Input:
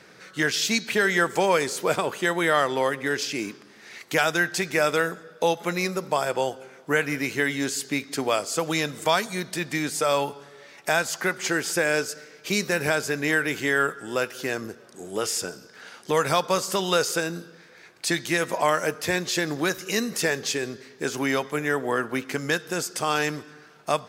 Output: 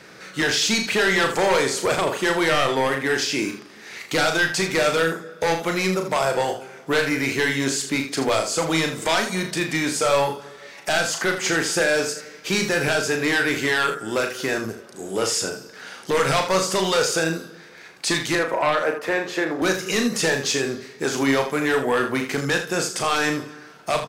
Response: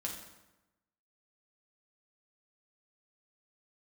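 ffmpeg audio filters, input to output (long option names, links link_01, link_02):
-filter_complex "[0:a]asettb=1/sr,asplit=3[link_01][link_02][link_03];[link_01]atrim=end=18.354[link_04];[link_02]atrim=start=18.35:end=19.62,asetpts=PTS-STARTPTS,afade=type=in:duration=0.004:curve=qsin,afade=type=out:start_time=1.266:duration=0.004:curve=qsin,acrossover=split=250 2300:gain=0.158 1 0.141[link_05][link_06][link_07];[link_05][link_06][link_07]amix=inputs=3:normalize=0[link_08];[link_03]atrim=start=19.616[link_09];[link_04][link_08]acrossfade=duration=0.004:curve1=hsin:curve2=qsin[link_10];[link_10][link_09]acrossfade=duration=0.004:curve1=qsin:curve2=hsin,aeval=exprs='0.422*sin(PI/2*2.82*val(0)/0.422)':channel_layout=same,acrossover=split=9600[link_11][link_12];[link_12]acompressor=threshold=-38dB:ratio=4:attack=1:release=60[link_13];[link_11][link_13]amix=inputs=2:normalize=0,aecho=1:1:37|80:0.501|0.335,volume=-8dB"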